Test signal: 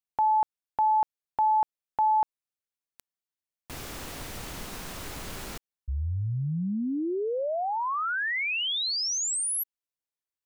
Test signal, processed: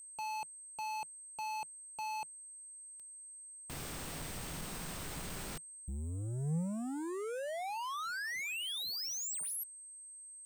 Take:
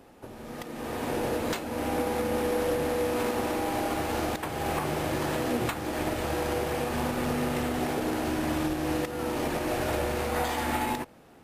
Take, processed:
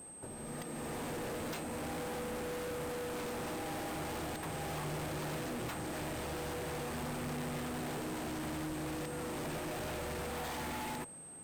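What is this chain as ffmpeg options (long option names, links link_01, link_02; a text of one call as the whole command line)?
ffmpeg -i in.wav -af "aeval=exprs='val(0)+0.00562*sin(2*PI*8300*n/s)':channel_layout=same,volume=34.5dB,asoftclip=hard,volume=-34.5dB,equalizer=frequency=160:width_type=o:width=0.4:gain=7.5,volume=-4dB" out.wav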